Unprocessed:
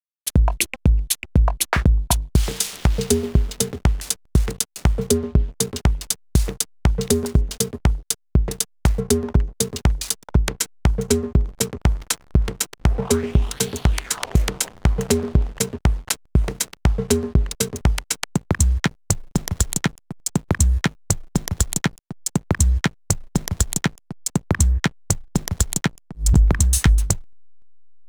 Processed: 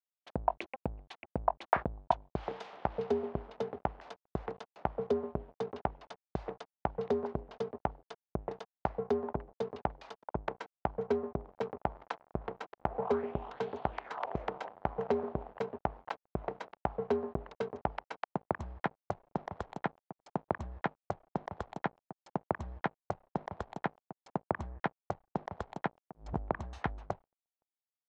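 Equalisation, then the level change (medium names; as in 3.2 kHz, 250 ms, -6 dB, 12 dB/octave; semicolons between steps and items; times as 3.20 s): band-pass filter 760 Hz, Q 2.1; distance through air 230 m; 0.0 dB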